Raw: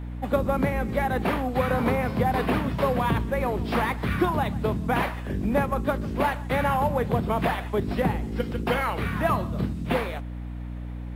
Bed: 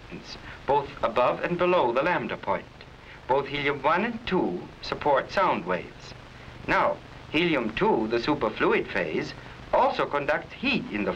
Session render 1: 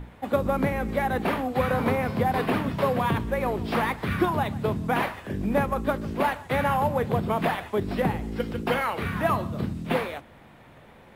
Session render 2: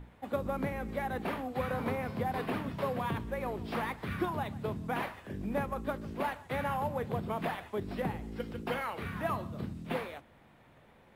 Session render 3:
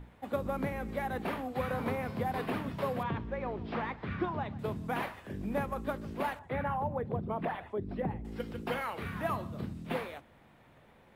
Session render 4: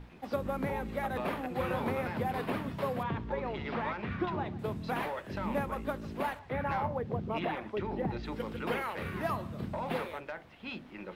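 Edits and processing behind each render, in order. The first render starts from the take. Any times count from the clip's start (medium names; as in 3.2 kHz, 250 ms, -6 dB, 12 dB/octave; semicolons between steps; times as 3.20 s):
hum notches 60/120/180/240/300 Hz
trim -9.5 dB
3.03–4.59 s: distance through air 190 m; 6.39–8.25 s: resonances exaggerated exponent 1.5
add bed -16.5 dB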